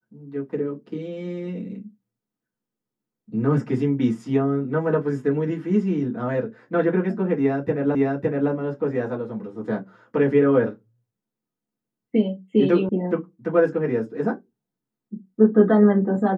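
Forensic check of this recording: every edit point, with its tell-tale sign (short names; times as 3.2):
7.95 repeat of the last 0.56 s
12.89 sound cut off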